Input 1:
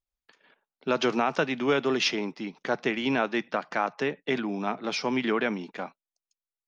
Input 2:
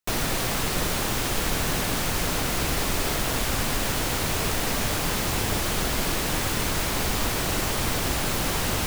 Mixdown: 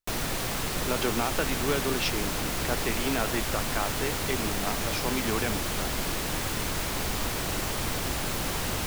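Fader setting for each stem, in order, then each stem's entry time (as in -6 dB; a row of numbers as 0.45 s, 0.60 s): -4.5 dB, -4.5 dB; 0.00 s, 0.00 s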